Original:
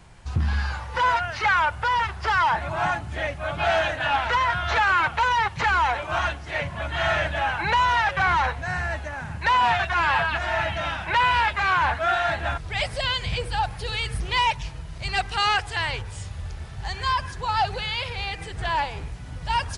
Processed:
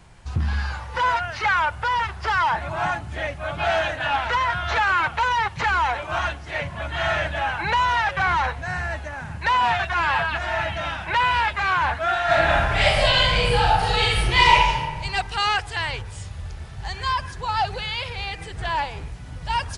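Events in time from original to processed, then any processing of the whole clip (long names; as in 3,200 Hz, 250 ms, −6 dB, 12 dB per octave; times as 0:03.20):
0:12.25–0:14.78: thrown reverb, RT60 1.3 s, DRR −8.5 dB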